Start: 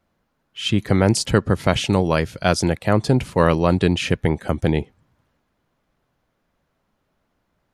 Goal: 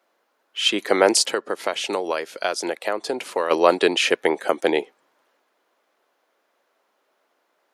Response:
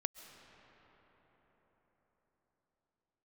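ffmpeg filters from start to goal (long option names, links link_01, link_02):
-filter_complex "[0:a]highpass=frequency=370:width=0.5412,highpass=frequency=370:width=1.3066,asplit=3[link_01][link_02][link_03];[link_01]afade=type=out:start_time=1.27:duration=0.02[link_04];[link_02]acompressor=threshold=-27dB:ratio=4,afade=type=in:start_time=1.27:duration=0.02,afade=type=out:start_time=3.5:duration=0.02[link_05];[link_03]afade=type=in:start_time=3.5:duration=0.02[link_06];[link_04][link_05][link_06]amix=inputs=3:normalize=0,volume=5dB"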